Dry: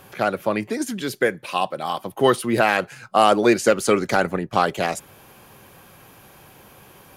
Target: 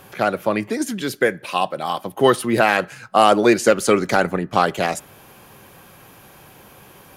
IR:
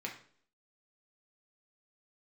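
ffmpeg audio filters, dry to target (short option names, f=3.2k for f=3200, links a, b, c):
-filter_complex "[0:a]asplit=2[a][b];[1:a]atrim=start_sample=2205,asetrate=35721,aresample=44100[c];[b][c]afir=irnorm=-1:irlink=0,volume=-21dB[d];[a][d]amix=inputs=2:normalize=0,volume=1.5dB"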